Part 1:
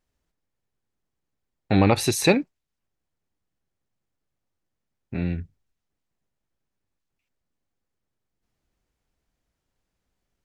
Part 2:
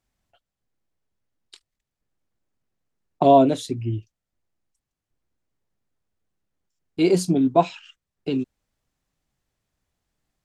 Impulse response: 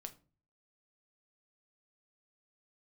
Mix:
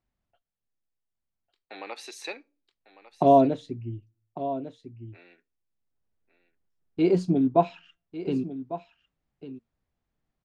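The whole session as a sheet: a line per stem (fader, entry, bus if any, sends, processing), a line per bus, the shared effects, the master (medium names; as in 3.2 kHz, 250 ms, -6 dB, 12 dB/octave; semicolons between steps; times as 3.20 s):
-12.0 dB, 0.00 s, send -9.5 dB, echo send -14 dB, high-pass 320 Hz 24 dB/octave; tilt EQ +4.5 dB/octave
0.0 dB, 0.00 s, send -19.5 dB, echo send -13 dB, auto duck -23 dB, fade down 1.75 s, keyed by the first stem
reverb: on, RT60 0.35 s, pre-delay 6 ms
echo: delay 1150 ms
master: tape spacing loss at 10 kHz 24 dB; feedback comb 230 Hz, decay 0.25 s, harmonics all, mix 30%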